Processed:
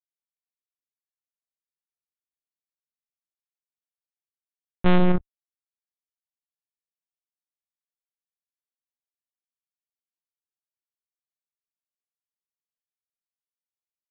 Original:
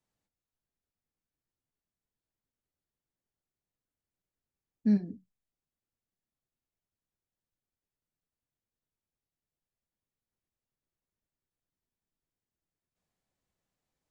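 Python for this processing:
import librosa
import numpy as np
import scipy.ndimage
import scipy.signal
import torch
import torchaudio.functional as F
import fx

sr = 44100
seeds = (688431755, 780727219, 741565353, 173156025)

y = fx.fuzz(x, sr, gain_db=48.0, gate_db=-56.0)
y = fx.lpc_monotone(y, sr, seeds[0], pitch_hz=180.0, order=8)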